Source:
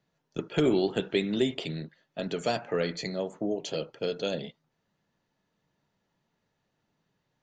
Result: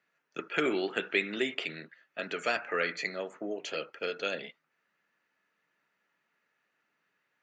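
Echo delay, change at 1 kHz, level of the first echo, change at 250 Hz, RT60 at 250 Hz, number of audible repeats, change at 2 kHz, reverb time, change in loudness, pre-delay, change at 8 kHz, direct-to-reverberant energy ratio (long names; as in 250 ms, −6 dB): no echo audible, +0.5 dB, no echo audible, −8.0 dB, no reverb audible, no echo audible, +7.0 dB, no reverb audible, −2.5 dB, no reverb audible, −4.0 dB, no reverb audible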